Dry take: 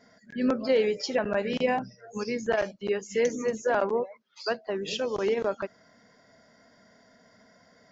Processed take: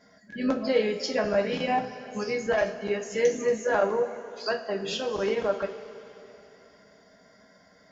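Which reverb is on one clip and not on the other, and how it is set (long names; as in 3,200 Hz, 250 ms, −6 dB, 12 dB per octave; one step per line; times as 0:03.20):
coupled-rooms reverb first 0.26 s, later 3.3 s, from −18 dB, DRR 1.5 dB
level −1 dB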